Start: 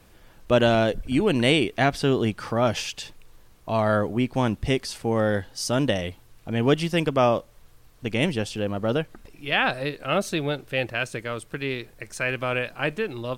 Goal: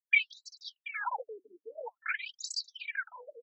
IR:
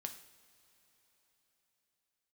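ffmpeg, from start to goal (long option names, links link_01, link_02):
-filter_complex "[0:a]highpass=200,afftfilt=real='re*gte(hypot(re,im),0.0158)':imag='im*gte(hypot(re,im),0.0158)':win_size=1024:overlap=0.75,aecho=1:1:5.1:0.87,asetrate=172431,aresample=44100,lowshelf=frequency=510:width_type=q:width=3:gain=7.5,flanger=delay=2:depth=5.5:regen=-65:speed=1.7:shape=triangular,acrossover=split=3900[link_01][link_02];[link_02]adelay=730[link_03];[link_01][link_03]amix=inputs=2:normalize=0,afftfilt=real='re*between(b*sr/1024,300*pow(5700/300,0.5+0.5*sin(2*PI*0.49*pts/sr))/1.41,300*pow(5700/300,0.5+0.5*sin(2*PI*0.49*pts/sr))*1.41)':imag='im*between(b*sr/1024,300*pow(5700/300,0.5+0.5*sin(2*PI*0.49*pts/sr))/1.41,300*pow(5700/300,0.5+0.5*sin(2*PI*0.49*pts/sr))*1.41)':win_size=1024:overlap=0.75"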